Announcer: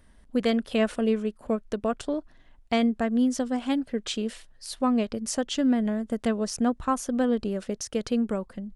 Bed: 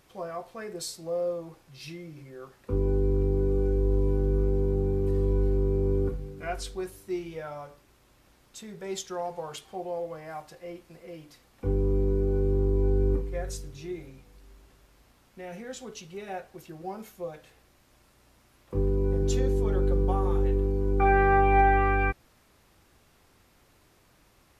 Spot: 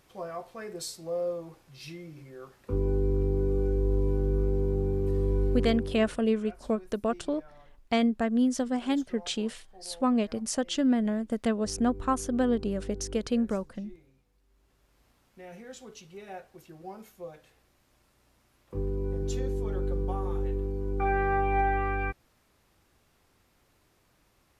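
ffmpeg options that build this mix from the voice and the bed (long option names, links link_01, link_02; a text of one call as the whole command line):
ffmpeg -i stem1.wav -i stem2.wav -filter_complex "[0:a]adelay=5200,volume=-1.5dB[link_01];[1:a]volume=9.5dB,afade=type=out:start_time=5.52:duration=0.48:silence=0.177828,afade=type=in:start_time=14.48:duration=0.58:silence=0.281838[link_02];[link_01][link_02]amix=inputs=2:normalize=0" out.wav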